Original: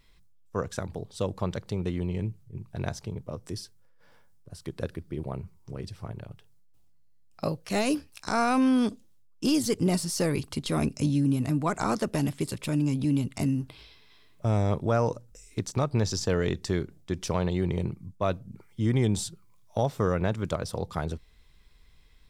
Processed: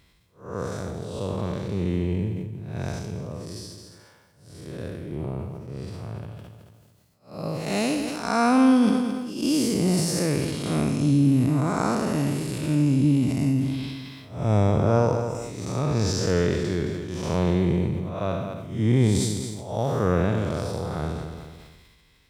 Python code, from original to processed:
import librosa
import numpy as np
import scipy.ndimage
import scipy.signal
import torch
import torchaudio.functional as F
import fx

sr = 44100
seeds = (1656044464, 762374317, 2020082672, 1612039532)

y = fx.spec_blur(x, sr, span_ms=206.0)
y = scipy.signal.sosfilt(scipy.signal.butter(2, 71.0, 'highpass', fs=sr, output='sos'), y)
y = fx.echo_feedback(y, sr, ms=218, feedback_pct=32, wet_db=-12)
y = fx.sustainer(y, sr, db_per_s=34.0)
y = y * 10.0 ** (6.5 / 20.0)